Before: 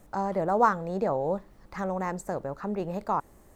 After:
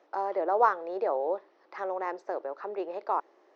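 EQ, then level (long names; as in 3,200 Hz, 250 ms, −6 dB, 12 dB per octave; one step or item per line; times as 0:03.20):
Chebyshev band-pass filter 340–5,700 Hz, order 4
high-frequency loss of the air 110 metres
0.0 dB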